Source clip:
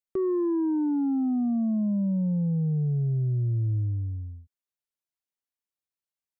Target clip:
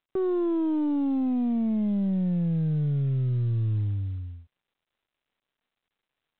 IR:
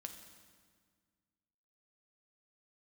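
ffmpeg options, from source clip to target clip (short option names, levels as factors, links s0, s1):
-af "aeval=exprs='0.075*(cos(1*acos(clip(val(0)/0.075,-1,1)))-cos(1*PI/2))+0.0075*(cos(2*acos(clip(val(0)/0.075,-1,1)))-cos(2*PI/2))+0.000841*(cos(8*acos(clip(val(0)/0.075,-1,1)))-cos(8*PI/2))':c=same" -ar 8000 -c:a pcm_mulaw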